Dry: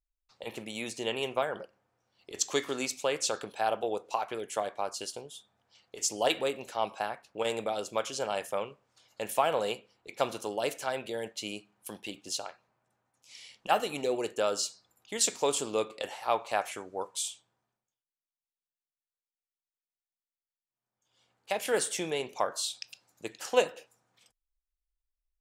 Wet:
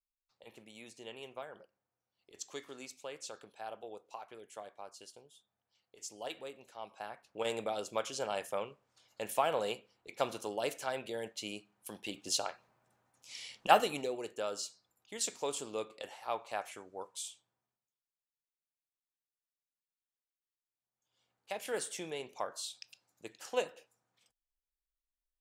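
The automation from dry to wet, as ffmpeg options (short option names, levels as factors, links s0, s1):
-af "volume=1.41,afade=t=in:st=6.89:d=0.59:silence=0.281838,afade=t=in:st=11.93:d=0.54:silence=0.446684,afade=t=out:st=13.67:d=0.45:silence=0.266073"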